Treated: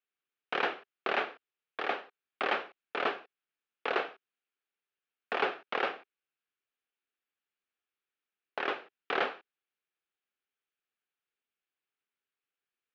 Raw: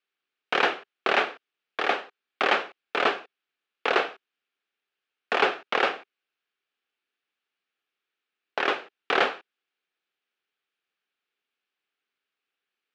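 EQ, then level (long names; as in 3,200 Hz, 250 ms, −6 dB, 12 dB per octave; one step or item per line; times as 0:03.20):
high-frequency loss of the air 130 metres
−7.0 dB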